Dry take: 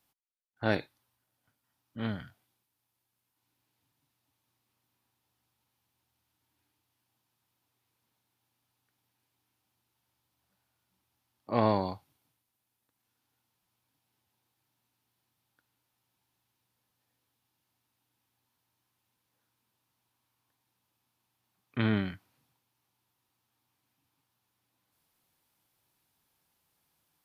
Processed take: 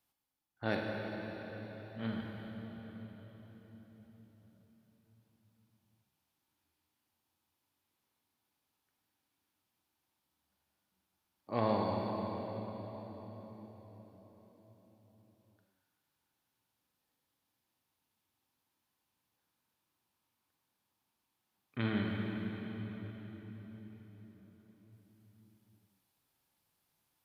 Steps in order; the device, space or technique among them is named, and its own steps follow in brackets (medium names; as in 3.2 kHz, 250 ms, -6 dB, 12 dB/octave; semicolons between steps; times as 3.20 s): cathedral (reverberation RT60 5.0 s, pre-delay 30 ms, DRR -0.5 dB); trim -6.5 dB